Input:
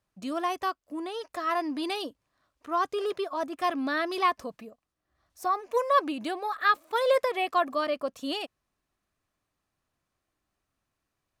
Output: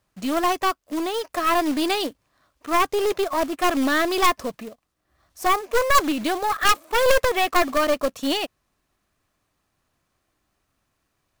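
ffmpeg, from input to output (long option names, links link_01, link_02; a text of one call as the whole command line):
ffmpeg -i in.wav -af "acrusher=bits=3:mode=log:mix=0:aa=0.000001,aeval=exprs='0.266*(cos(1*acos(clip(val(0)/0.266,-1,1)))-cos(1*PI/2))+0.119*(cos(4*acos(clip(val(0)/0.266,-1,1)))-cos(4*PI/2))+0.0944*(cos(5*acos(clip(val(0)/0.266,-1,1)))-cos(5*PI/2))':channel_layout=same" out.wav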